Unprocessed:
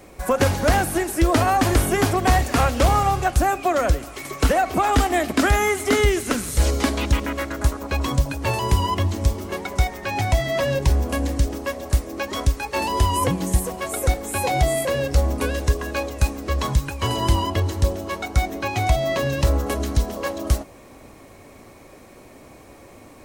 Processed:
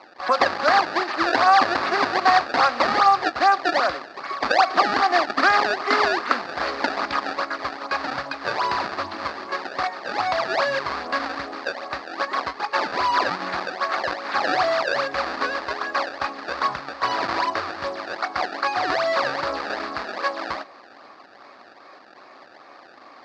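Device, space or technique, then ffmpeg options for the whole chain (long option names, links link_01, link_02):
circuit-bent sampling toy: -af "acrusher=samples=24:mix=1:aa=0.000001:lfo=1:lforange=38.4:lforate=2.5,highpass=450,equalizer=frequency=460:width_type=q:width=4:gain=-5,equalizer=frequency=760:width_type=q:width=4:gain=4,equalizer=frequency=1200:width_type=q:width=4:gain=10,equalizer=frequency=1700:width_type=q:width=4:gain=6,equalizer=frequency=3100:width_type=q:width=4:gain=-6,equalizer=frequency=4600:width_type=q:width=4:gain=9,lowpass=frequency=4700:width=0.5412,lowpass=frequency=4700:width=1.3066"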